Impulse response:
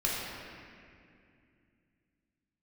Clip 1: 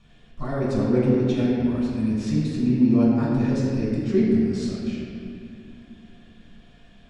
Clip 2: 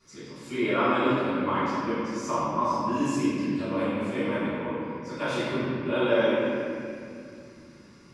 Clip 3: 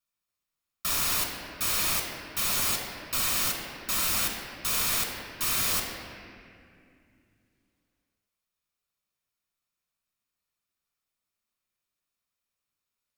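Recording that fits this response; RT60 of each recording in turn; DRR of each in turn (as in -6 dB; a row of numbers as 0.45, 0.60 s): 1; 2.4, 2.4, 2.4 s; -5.5, -15.5, 1.0 dB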